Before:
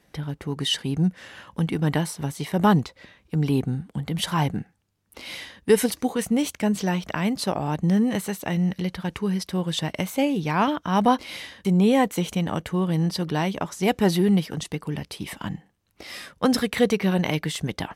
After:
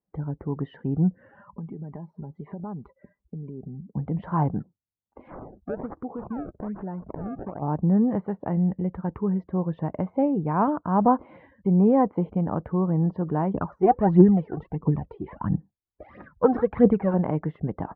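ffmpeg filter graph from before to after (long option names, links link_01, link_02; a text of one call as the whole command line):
ffmpeg -i in.wav -filter_complex "[0:a]asettb=1/sr,asplit=3[link_01][link_02][link_03];[link_01]atrim=end=1.324[link_04];[link_02]atrim=start=1.32:end=3.93,asetpts=PTS-STARTPTS,afade=type=in:duration=0.004:curve=qsin,afade=type=out:start_time=2.606:duration=0.004:curve=qsin,acompressor=threshold=-33dB:ratio=12:attack=3.2:release=140:knee=1:detection=peak,aecho=1:1:5:0.35,atrim=end_sample=115101[link_05];[link_03]atrim=start=3.926[link_06];[link_04][link_05]acrossfade=duration=0.004:curve1=hsin:curve2=qsin[link_07];[link_07][link_06]acrossfade=duration=0.004:curve1=qsin:curve2=hsin,asettb=1/sr,asplit=3[link_08][link_09][link_10];[link_08]atrim=end=4.604[link_11];[link_09]atrim=start=4.6:end=7.62,asetpts=PTS-STARTPTS,afade=type=in:duration=0.004:curve=qsin,afade=type=out:start_time=3.016:duration=0.004:curve=qsin,acrusher=samples=26:mix=1:aa=0.000001:lfo=1:lforange=41.6:lforate=1.2,acompressor=threshold=-33dB:ratio=2.5:attack=3.2:release=140:knee=1:detection=peak[link_12];[link_10]atrim=start=7.616[link_13];[link_11][link_12]acrossfade=duration=0.004:curve1=hsin:curve2=qsin[link_14];[link_14][link_13]acrossfade=duration=0.004:curve1=qsin:curve2=hsin,asettb=1/sr,asplit=3[link_15][link_16][link_17];[link_15]atrim=end=13.544[link_18];[link_16]atrim=start=13.54:end=17.14,asetpts=PTS-STARTPTS,afade=type=in:duration=0.004:curve=qsin,afade=type=out:start_time=3.596:duration=0.004:curve=qsin,highshelf=frequency=8800:gain=3,aphaser=in_gain=1:out_gain=1:delay=2.9:decay=0.67:speed=1.5:type=triangular[link_19];[link_17]atrim=start=17.136[link_20];[link_18][link_19]acrossfade=duration=0.004:curve1=hsin:curve2=qsin[link_21];[link_21][link_20]acrossfade=duration=0.004:curve1=qsin:curve2=hsin,afftdn=noise_reduction=26:noise_floor=-43,lowpass=frequency=1200:width=0.5412,lowpass=frequency=1200:width=1.3066" out.wav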